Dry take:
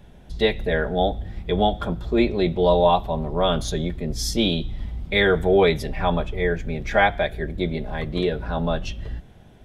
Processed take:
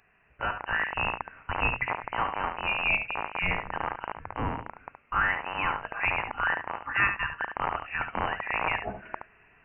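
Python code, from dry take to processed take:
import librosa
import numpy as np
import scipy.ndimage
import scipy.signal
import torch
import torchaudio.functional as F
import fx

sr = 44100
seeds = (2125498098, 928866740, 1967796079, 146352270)

p1 = fx.rattle_buzz(x, sr, strikes_db=-24.0, level_db=-17.0)
p2 = scipy.signal.sosfilt(scipy.signal.butter(4, 1000.0, 'highpass', fs=sr, output='sos'), p1)
p3 = fx.rider(p2, sr, range_db=4, speed_s=0.5)
p4 = p3 + fx.echo_single(p3, sr, ms=71, db=-8.0, dry=0)
y = fx.freq_invert(p4, sr, carrier_hz=3400)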